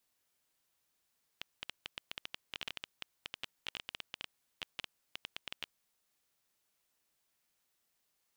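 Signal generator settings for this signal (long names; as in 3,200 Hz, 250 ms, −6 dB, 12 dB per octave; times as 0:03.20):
Geiger counter clicks 11 per second −22 dBFS 4.30 s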